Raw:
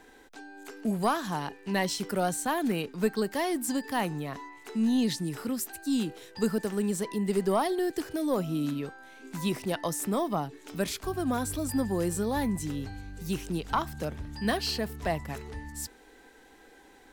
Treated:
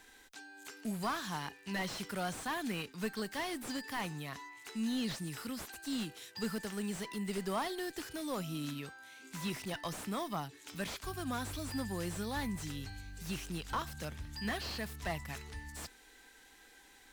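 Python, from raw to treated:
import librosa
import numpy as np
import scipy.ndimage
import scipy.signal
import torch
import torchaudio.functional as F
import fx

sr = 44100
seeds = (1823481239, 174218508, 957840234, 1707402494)

y = fx.tone_stack(x, sr, knobs='5-5-5')
y = fx.mod_noise(y, sr, seeds[0], snr_db=35)
y = fx.slew_limit(y, sr, full_power_hz=13.0)
y = y * librosa.db_to_amplitude(8.5)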